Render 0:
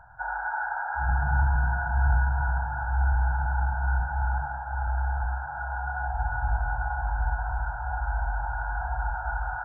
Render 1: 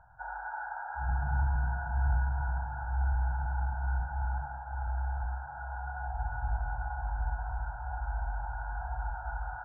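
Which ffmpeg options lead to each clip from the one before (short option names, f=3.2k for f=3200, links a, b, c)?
-af "lowpass=f=1.1k:p=1,volume=-5.5dB"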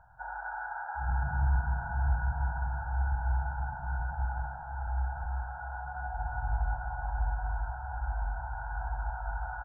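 -af "aecho=1:1:177:0.562"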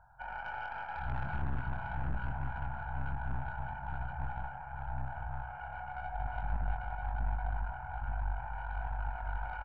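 -filter_complex "[0:a]aeval=exprs='(tanh(31.6*val(0)+0.7)-tanh(0.7))/31.6':c=same,asplit=2[a][b];[b]adelay=23,volume=-6dB[c];[a][c]amix=inputs=2:normalize=0"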